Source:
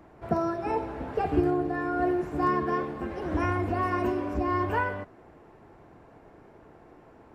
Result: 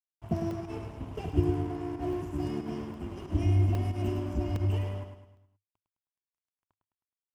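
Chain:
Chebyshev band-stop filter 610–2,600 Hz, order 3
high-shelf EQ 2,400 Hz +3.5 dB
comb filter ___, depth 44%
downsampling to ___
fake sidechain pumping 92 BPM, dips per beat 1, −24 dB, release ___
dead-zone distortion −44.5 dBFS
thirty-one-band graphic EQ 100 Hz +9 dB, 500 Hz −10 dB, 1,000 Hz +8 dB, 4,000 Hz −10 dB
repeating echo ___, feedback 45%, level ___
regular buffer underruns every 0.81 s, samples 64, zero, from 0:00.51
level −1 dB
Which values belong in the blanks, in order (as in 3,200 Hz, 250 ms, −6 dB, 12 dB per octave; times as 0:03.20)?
1 ms, 32,000 Hz, 93 ms, 105 ms, −7 dB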